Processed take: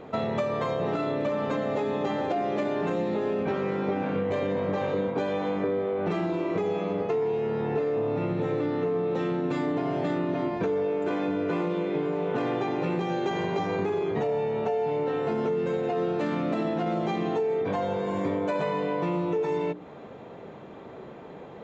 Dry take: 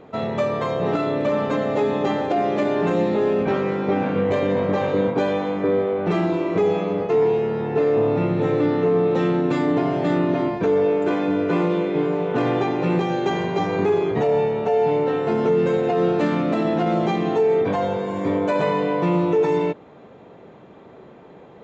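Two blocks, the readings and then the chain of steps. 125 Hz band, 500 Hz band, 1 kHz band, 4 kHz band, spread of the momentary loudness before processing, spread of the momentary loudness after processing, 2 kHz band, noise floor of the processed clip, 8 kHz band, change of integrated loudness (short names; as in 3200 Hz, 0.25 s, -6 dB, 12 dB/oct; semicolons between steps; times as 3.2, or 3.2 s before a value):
-7.5 dB, -7.0 dB, -6.5 dB, -6.0 dB, 4 LU, 1 LU, -6.0 dB, -44 dBFS, n/a, -7.0 dB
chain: notches 60/120/180/240/300/360/420 Hz; compressor, threshold -27 dBFS, peak gain reduction 11.5 dB; gain +2 dB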